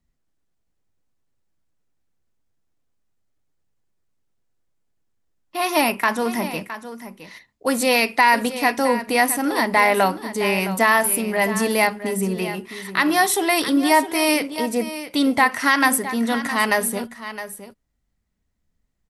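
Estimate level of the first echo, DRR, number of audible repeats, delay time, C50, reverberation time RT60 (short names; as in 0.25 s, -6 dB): -12.5 dB, none, 1, 0.664 s, none, none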